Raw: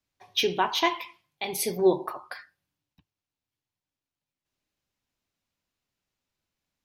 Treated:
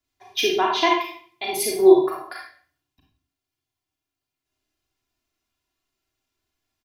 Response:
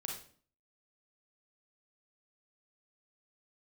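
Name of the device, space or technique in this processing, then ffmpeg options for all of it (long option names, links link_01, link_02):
microphone above a desk: -filter_complex "[0:a]asettb=1/sr,asplit=3[link_01][link_02][link_03];[link_01]atrim=end=0.554[link_04];[link_02]atrim=start=0.55:end=0.97,asetpts=PTS-STARTPTS,afade=type=in:duration=0.004:curve=qsin,afade=type=out:start_time=0.416:duration=0.004:curve=qsin,lowpass=6200[link_05];[link_03]atrim=start=0.966[link_06];[link_04][link_05]acrossfade=duration=0.004:curve1=hsin:curve2=qsin[link_07];[link_07][link_06]acrossfade=duration=0.004:curve1=qsin:curve2=hsin,aecho=1:1:2.9:0.8[link_08];[1:a]atrim=start_sample=2205[link_09];[link_08][link_09]afir=irnorm=-1:irlink=0,volume=3dB"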